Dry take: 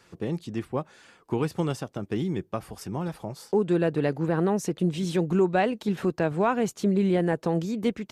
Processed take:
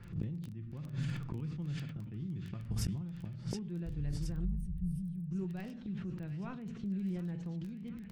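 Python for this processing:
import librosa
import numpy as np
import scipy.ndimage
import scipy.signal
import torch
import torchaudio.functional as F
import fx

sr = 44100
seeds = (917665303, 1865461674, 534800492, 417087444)

p1 = fx.octave_divider(x, sr, octaves=2, level_db=-5.0, at=(3.85, 4.85))
p2 = fx.bass_treble(p1, sr, bass_db=15, treble_db=-6)
p3 = fx.room_shoebox(p2, sr, seeds[0], volume_m3=670.0, walls='furnished', distance_m=0.83)
p4 = fx.gate_flip(p3, sr, shuts_db=-18.0, range_db=-26)
p5 = fx.over_compress(p4, sr, threshold_db=-34.0, ratio=-0.5)
p6 = fx.peak_eq(p5, sr, hz=630.0, db=-12.5, octaves=2.7)
p7 = p6 + fx.echo_wet_highpass(p6, sr, ms=721, feedback_pct=58, hz=1800.0, wet_db=-5.5, dry=0)
p8 = fx.env_lowpass(p7, sr, base_hz=1600.0, full_db=-35.5)
p9 = fx.dmg_crackle(p8, sr, seeds[1], per_s=13.0, level_db=-51.0)
p10 = fx.spec_box(p9, sr, start_s=4.45, length_s=0.86, low_hz=210.0, high_hz=8300.0, gain_db=-21)
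p11 = fx.sustainer(p10, sr, db_per_s=36.0)
y = F.gain(torch.from_numpy(p11), 5.0).numpy()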